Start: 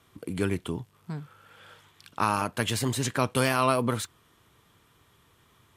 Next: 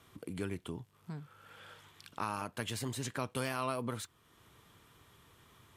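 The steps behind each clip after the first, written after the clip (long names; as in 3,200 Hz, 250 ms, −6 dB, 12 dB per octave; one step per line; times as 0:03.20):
downward compressor 1.5 to 1, threshold −54 dBFS, peak gain reduction 12.5 dB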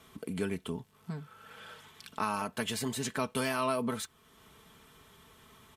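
comb filter 4.6 ms, depth 56%
level +3.5 dB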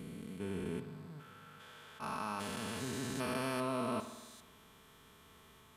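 spectrum averaged block by block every 400 ms
spring reverb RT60 1.3 s, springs 52 ms, chirp 55 ms, DRR 10 dB
level that may rise only so fast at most 290 dB per second
level −1.5 dB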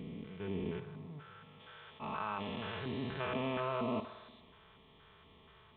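auto-filter notch square 2.1 Hz 250–1,500 Hz
level +2 dB
G.726 40 kbit/s 8,000 Hz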